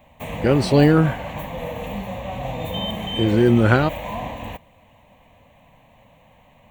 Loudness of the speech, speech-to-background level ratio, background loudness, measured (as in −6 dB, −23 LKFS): −18.0 LKFS, 11.0 dB, −29.0 LKFS